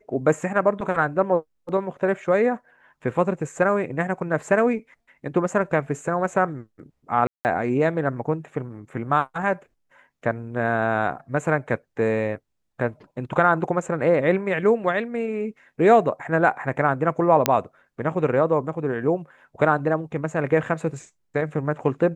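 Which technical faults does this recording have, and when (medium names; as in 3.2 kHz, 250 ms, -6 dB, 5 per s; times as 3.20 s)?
7.27–7.45 s: dropout 179 ms
17.46 s: pop -1 dBFS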